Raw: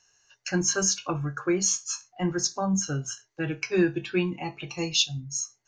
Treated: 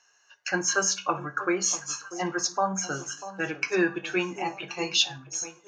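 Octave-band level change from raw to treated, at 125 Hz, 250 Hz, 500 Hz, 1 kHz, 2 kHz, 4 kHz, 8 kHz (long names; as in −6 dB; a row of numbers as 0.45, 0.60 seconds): −9.5, −4.0, −0.5, +6.0, +5.0, +0.5, −1.5 decibels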